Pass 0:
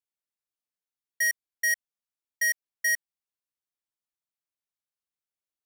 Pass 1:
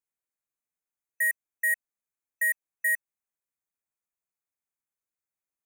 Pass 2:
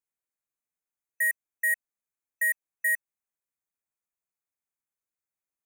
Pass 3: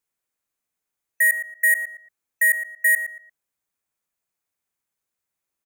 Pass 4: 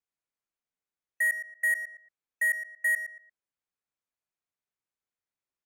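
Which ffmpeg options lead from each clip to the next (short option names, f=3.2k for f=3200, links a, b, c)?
-af "afftfilt=real='re*(1-between(b*sr/4096,2600,6000))':imag='im*(1-between(b*sr/4096,2600,6000))':win_size=4096:overlap=0.75"
-af anull
-filter_complex "[0:a]asplit=2[a][b];[b]adelay=115,lowpass=f=3.6k:p=1,volume=-10dB,asplit=2[c][d];[d]adelay=115,lowpass=f=3.6k:p=1,volume=0.3,asplit=2[e][f];[f]adelay=115,lowpass=f=3.6k:p=1,volume=0.3[g];[a][c][e][g]amix=inputs=4:normalize=0,volume=8dB"
-af "adynamicsmooth=sensitivity=8:basefreq=6.8k,volume=-8dB"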